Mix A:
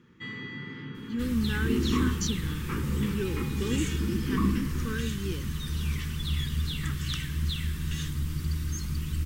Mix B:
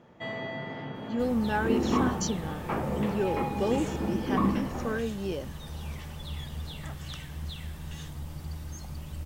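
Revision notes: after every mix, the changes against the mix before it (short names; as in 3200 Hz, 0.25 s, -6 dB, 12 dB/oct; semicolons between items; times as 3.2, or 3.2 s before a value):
second sound -8.0 dB; master: remove Butterworth band-stop 680 Hz, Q 0.79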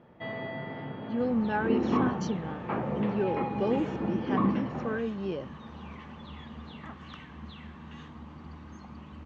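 second sound: add speaker cabinet 130–7300 Hz, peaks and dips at 140 Hz -10 dB, 230 Hz +9 dB, 590 Hz -5 dB, 1100 Hz +8 dB, 3600 Hz -4 dB, 5100 Hz -8 dB; master: add air absorption 220 m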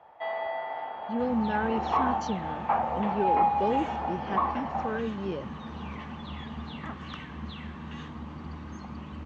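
first sound: add resonant high-pass 780 Hz, resonance Q 4.7; second sound +5.5 dB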